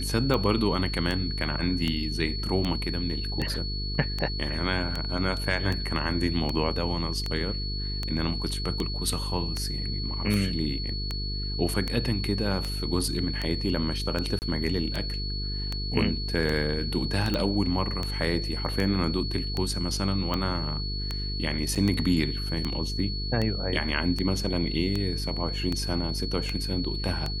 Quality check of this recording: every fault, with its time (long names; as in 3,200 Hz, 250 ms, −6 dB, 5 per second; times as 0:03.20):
mains buzz 50 Hz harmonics 9 −32 dBFS
scratch tick 78 rpm −15 dBFS
whistle 4,400 Hz −34 dBFS
0:14.39–0:14.42: drop-out 29 ms
0:17.34: click −14 dBFS
0:21.75–0:21.76: drop-out 6.7 ms